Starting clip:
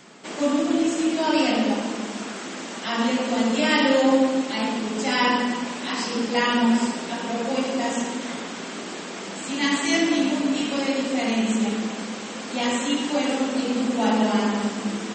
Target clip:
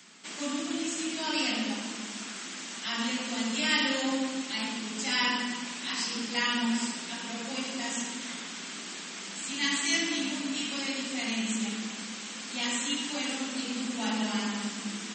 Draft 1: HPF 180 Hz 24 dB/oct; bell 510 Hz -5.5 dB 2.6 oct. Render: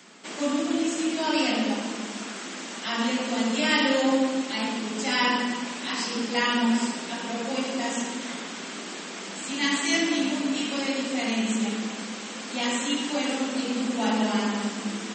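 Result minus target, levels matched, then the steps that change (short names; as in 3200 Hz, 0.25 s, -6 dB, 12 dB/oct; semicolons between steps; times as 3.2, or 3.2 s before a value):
500 Hz band +6.0 dB
change: bell 510 Hz -16.5 dB 2.6 oct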